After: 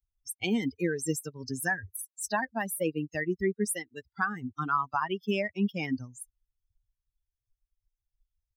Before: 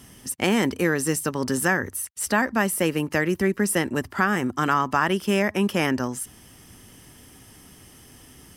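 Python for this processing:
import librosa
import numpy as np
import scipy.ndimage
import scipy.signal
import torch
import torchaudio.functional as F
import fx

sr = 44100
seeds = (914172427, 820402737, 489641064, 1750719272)

y = fx.bin_expand(x, sr, power=3.0)
y = fx.highpass(y, sr, hz=780.0, slope=6, at=(3.64, 4.06), fade=0.02)
y = y * 10.0 ** (-1.5 / 20.0)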